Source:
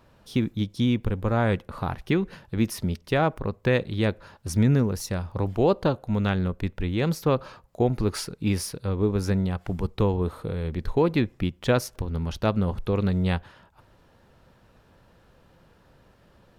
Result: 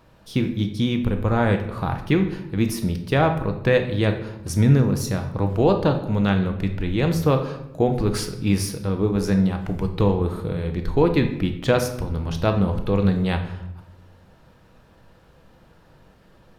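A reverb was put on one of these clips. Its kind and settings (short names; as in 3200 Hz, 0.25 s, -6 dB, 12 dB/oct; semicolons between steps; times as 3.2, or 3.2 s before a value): shoebox room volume 290 m³, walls mixed, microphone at 0.6 m; gain +2.5 dB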